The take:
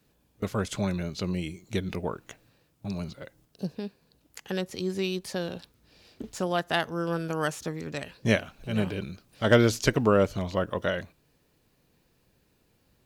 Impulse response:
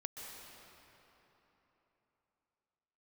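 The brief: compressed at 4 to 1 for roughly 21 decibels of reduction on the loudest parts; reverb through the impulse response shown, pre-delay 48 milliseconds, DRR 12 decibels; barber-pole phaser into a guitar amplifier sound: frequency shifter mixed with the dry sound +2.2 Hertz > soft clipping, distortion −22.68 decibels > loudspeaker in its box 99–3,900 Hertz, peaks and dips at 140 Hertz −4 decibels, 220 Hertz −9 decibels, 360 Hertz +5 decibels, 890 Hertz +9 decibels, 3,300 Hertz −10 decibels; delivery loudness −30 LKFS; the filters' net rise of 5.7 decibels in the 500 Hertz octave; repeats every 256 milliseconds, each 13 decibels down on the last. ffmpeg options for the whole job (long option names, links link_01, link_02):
-filter_complex "[0:a]equalizer=frequency=500:width_type=o:gain=5,acompressor=threshold=-38dB:ratio=4,aecho=1:1:256|512|768:0.224|0.0493|0.0108,asplit=2[link_01][link_02];[1:a]atrim=start_sample=2205,adelay=48[link_03];[link_02][link_03]afir=irnorm=-1:irlink=0,volume=-10.5dB[link_04];[link_01][link_04]amix=inputs=2:normalize=0,asplit=2[link_05][link_06];[link_06]afreqshift=2.2[link_07];[link_05][link_07]amix=inputs=2:normalize=1,asoftclip=threshold=-29dB,highpass=99,equalizer=frequency=140:width_type=q:width=4:gain=-4,equalizer=frequency=220:width_type=q:width=4:gain=-9,equalizer=frequency=360:width_type=q:width=4:gain=5,equalizer=frequency=890:width_type=q:width=4:gain=9,equalizer=frequency=3300:width_type=q:width=4:gain=-10,lowpass=frequency=3900:width=0.5412,lowpass=frequency=3900:width=1.3066,volume=14dB"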